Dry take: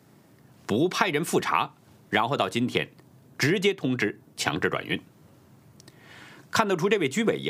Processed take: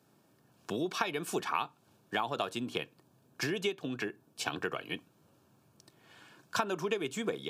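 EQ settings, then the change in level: Butterworth band-stop 2000 Hz, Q 5.5; low shelf 220 Hz -7.5 dB; -8.0 dB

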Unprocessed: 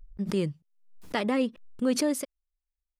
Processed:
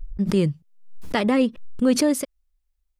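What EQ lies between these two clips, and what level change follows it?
low shelf 120 Hz +10.5 dB; +5.5 dB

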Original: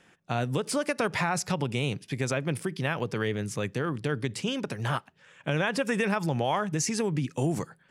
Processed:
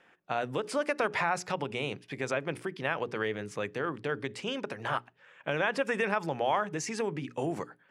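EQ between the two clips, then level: tone controls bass -12 dB, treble -15 dB; notches 60/120/180/240/300/360/420 Hz; dynamic EQ 7200 Hz, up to +5 dB, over -54 dBFS, Q 0.93; 0.0 dB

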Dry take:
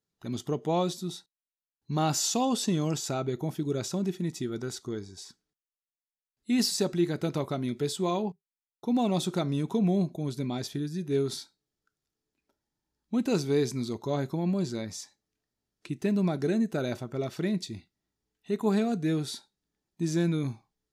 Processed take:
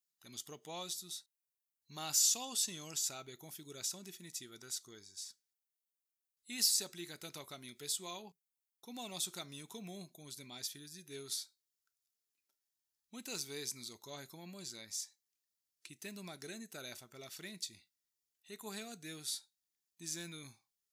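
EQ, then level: pre-emphasis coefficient 0.97; low shelf 190 Hz +5.5 dB; bell 2100 Hz +2 dB; +1.0 dB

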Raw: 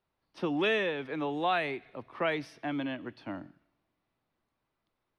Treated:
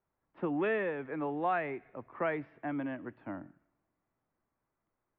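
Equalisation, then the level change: LPF 2000 Hz 24 dB/oct; -2.0 dB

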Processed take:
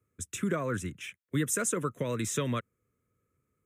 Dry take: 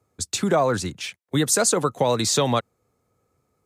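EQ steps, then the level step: fixed phaser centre 1900 Hz, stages 4; -6.0 dB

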